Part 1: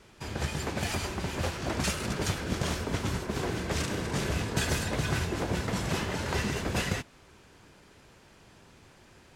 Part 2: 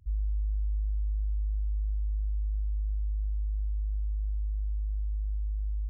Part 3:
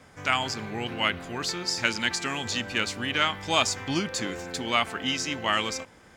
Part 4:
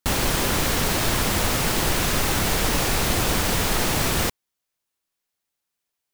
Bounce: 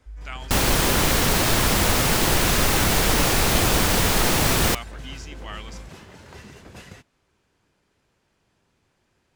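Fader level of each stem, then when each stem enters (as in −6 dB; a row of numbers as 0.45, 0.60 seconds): −13.0, −8.0, −12.5, +2.5 decibels; 0.00, 0.00, 0.00, 0.45 seconds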